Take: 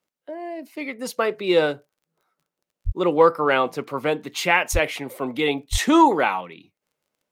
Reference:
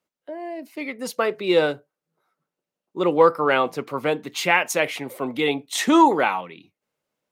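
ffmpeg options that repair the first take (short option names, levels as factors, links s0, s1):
-filter_complex "[0:a]adeclick=t=4,asplit=3[s0][s1][s2];[s0]afade=t=out:st=2.85:d=0.02[s3];[s1]highpass=f=140:w=0.5412,highpass=f=140:w=1.3066,afade=t=in:st=2.85:d=0.02,afade=t=out:st=2.97:d=0.02[s4];[s2]afade=t=in:st=2.97:d=0.02[s5];[s3][s4][s5]amix=inputs=3:normalize=0,asplit=3[s6][s7][s8];[s6]afade=t=out:st=4.72:d=0.02[s9];[s7]highpass=f=140:w=0.5412,highpass=f=140:w=1.3066,afade=t=in:st=4.72:d=0.02,afade=t=out:st=4.84:d=0.02[s10];[s8]afade=t=in:st=4.84:d=0.02[s11];[s9][s10][s11]amix=inputs=3:normalize=0,asplit=3[s12][s13][s14];[s12]afade=t=out:st=5.71:d=0.02[s15];[s13]highpass=f=140:w=0.5412,highpass=f=140:w=1.3066,afade=t=in:st=5.71:d=0.02,afade=t=out:st=5.83:d=0.02[s16];[s14]afade=t=in:st=5.83:d=0.02[s17];[s15][s16][s17]amix=inputs=3:normalize=0"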